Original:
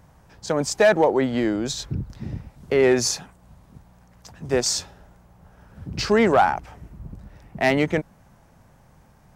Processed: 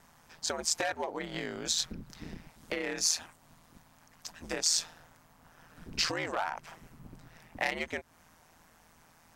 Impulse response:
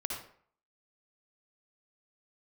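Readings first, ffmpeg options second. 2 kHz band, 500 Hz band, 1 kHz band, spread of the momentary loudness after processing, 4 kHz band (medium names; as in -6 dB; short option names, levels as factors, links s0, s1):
-9.5 dB, -18.5 dB, -14.0 dB, 18 LU, -3.0 dB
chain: -af "aeval=exprs='val(0)*sin(2*PI*82*n/s)':c=same,acompressor=threshold=0.0398:ratio=6,tiltshelf=f=750:g=-8,volume=0.794"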